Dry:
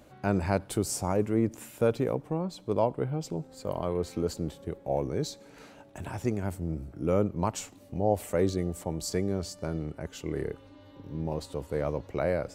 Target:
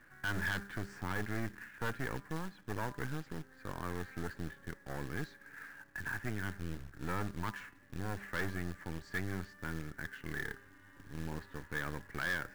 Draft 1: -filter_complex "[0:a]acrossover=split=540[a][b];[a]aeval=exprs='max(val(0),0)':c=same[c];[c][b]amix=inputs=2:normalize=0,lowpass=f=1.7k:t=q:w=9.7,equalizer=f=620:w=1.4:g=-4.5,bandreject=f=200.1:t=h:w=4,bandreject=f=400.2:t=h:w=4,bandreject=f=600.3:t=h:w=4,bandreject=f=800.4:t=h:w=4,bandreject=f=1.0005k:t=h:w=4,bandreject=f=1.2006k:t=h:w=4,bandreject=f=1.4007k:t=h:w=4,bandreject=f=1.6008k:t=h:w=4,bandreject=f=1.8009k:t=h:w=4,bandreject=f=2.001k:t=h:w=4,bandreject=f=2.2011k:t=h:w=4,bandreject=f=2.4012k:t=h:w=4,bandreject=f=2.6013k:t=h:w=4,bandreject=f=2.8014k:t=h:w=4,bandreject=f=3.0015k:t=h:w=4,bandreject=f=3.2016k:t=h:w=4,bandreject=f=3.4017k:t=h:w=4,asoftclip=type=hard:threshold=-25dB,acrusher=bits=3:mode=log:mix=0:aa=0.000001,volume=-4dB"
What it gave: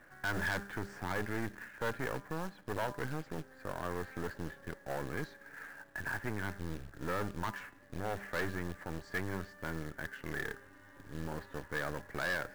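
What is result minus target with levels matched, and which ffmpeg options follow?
500 Hz band +4.0 dB
-filter_complex "[0:a]acrossover=split=540[a][b];[a]aeval=exprs='max(val(0),0)':c=same[c];[c][b]amix=inputs=2:normalize=0,lowpass=f=1.7k:t=q:w=9.7,equalizer=f=620:w=1.4:g=-15,bandreject=f=200.1:t=h:w=4,bandreject=f=400.2:t=h:w=4,bandreject=f=600.3:t=h:w=4,bandreject=f=800.4:t=h:w=4,bandreject=f=1.0005k:t=h:w=4,bandreject=f=1.2006k:t=h:w=4,bandreject=f=1.4007k:t=h:w=4,bandreject=f=1.6008k:t=h:w=4,bandreject=f=1.8009k:t=h:w=4,bandreject=f=2.001k:t=h:w=4,bandreject=f=2.2011k:t=h:w=4,bandreject=f=2.4012k:t=h:w=4,bandreject=f=2.6013k:t=h:w=4,bandreject=f=2.8014k:t=h:w=4,bandreject=f=3.0015k:t=h:w=4,bandreject=f=3.2016k:t=h:w=4,bandreject=f=3.4017k:t=h:w=4,asoftclip=type=hard:threshold=-25dB,acrusher=bits=3:mode=log:mix=0:aa=0.000001,volume=-4dB"

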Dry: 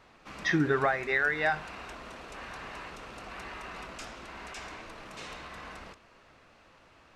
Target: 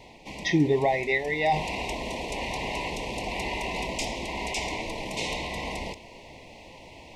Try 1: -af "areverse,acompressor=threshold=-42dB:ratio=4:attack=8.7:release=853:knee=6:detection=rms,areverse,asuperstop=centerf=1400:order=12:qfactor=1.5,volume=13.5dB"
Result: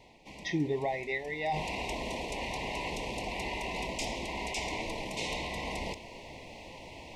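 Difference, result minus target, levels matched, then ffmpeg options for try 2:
compressor: peak gain reduction +8.5 dB
-af "areverse,acompressor=threshold=-30.5dB:ratio=4:attack=8.7:release=853:knee=6:detection=rms,areverse,asuperstop=centerf=1400:order=12:qfactor=1.5,volume=13.5dB"

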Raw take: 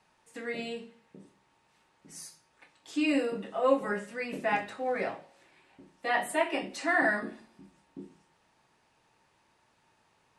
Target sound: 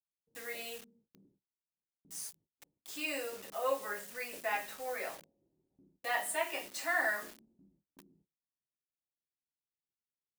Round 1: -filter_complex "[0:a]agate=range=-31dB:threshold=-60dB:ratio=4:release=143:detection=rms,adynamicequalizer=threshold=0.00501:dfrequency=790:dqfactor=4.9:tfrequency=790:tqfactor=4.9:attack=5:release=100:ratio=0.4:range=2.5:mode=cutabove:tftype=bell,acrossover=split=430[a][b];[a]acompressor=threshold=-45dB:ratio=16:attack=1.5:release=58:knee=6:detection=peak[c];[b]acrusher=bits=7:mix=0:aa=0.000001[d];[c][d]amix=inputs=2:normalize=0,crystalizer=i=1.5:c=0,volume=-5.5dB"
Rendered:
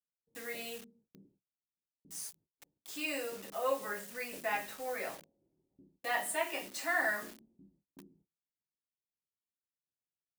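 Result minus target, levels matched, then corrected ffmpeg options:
compressor: peak gain reduction -8.5 dB
-filter_complex "[0:a]agate=range=-31dB:threshold=-60dB:ratio=4:release=143:detection=rms,adynamicequalizer=threshold=0.00501:dfrequency=790:dqfactor=4.9:tfrequency=790:tqfactor=4.9:attack=5:release=100:ratio=0.4:range=2.5:mode=cutabove:tftype=bell,acrossover=split=430[a][b];[a]acompressor=threshold=-54dB:ratio=16:attack=1.5:release=58:knee=6:detection=peak[c];[b]acrusher=bits=7:mix=0:aa=0.000001[d];[c][d]amix=inputs=2:normalize=0,crystalizer=i=1.5:c=0,volume=-5.5dB"

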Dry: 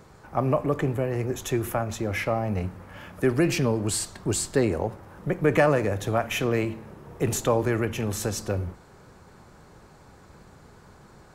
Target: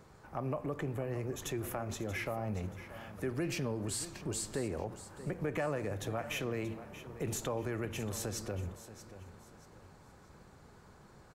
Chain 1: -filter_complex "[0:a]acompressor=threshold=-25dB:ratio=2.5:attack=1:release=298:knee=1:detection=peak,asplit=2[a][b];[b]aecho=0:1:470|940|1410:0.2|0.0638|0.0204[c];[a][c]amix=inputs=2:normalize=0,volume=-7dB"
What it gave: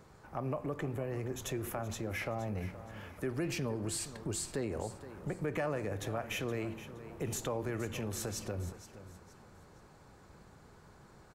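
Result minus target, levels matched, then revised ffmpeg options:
echo 0.161 s early
-filter_complex "[0:a]acompressor=threshold=-25dB:ratio=2.5:attack=1:release=298:knee=1:detection=peak,asplit=2[a][b];[b]aecho=0:1:631|1262|1893:0.2|0.0638|0.0204[c];[a][c]amix=inputs=2:normalize=0,volume=-7dB"

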